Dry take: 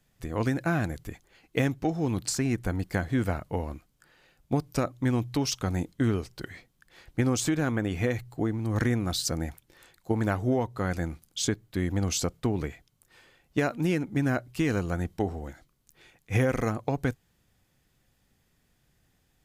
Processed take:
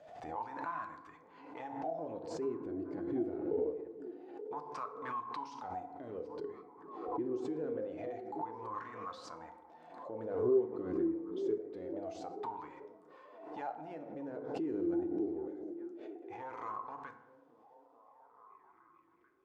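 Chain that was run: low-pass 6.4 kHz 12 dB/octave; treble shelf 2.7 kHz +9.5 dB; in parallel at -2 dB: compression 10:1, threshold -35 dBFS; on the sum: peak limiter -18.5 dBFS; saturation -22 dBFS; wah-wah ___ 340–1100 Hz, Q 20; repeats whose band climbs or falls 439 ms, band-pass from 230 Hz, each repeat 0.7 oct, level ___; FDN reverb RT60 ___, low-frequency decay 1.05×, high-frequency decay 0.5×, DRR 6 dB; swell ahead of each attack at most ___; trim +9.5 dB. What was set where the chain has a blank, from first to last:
0.25 Hz, -8.5 dB, 1 s, 54 dB/s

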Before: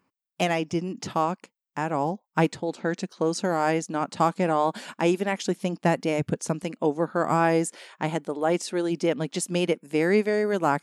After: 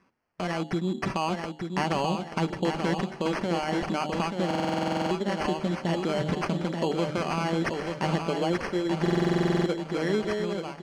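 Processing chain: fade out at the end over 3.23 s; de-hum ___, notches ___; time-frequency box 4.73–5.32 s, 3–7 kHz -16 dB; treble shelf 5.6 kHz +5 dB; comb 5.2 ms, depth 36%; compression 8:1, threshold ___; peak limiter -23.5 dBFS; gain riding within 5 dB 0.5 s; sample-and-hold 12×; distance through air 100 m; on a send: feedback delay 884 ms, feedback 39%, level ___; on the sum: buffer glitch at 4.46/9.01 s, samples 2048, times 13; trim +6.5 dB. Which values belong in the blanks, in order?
75.94 Hz, 12, -28 dBFS, -5.5 dB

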